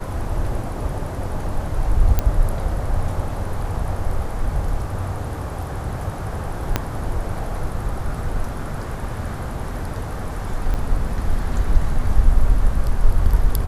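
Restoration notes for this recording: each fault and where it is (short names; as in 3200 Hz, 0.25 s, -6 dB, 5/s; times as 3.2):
2.19 pop -5 dBFS
6.76 pop -4 dBFS
10.74–10.75 gap 6.2 ms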